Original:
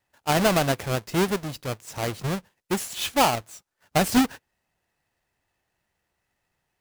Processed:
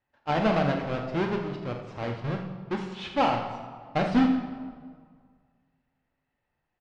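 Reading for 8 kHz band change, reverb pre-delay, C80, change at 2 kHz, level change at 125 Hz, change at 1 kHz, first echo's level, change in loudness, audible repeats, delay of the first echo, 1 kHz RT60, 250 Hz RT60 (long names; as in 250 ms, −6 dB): below −20 dB, 4 ms, 6.5 dB, −5.0 dB, −2.5 dB, −2.5 dB, −9.5 dB, −3.5 dB, 2, 42 ms, 1.8 s, 1.9 s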